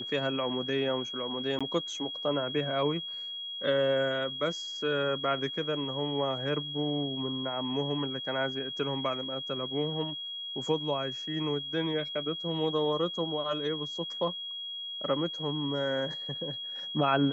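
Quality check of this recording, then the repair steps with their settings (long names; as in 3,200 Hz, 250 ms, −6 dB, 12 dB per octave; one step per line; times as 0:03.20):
whistle 3,300 Hz −36 dBFS
0:01.59–0:01.61: drop-out 16 ms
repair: notch filter 3,300 Hz, Q 30
repair the gap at 0:01.59, 16 ms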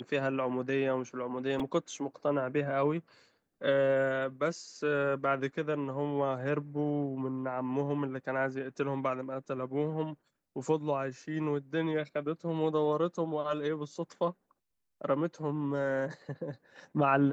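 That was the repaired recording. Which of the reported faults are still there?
none of them is left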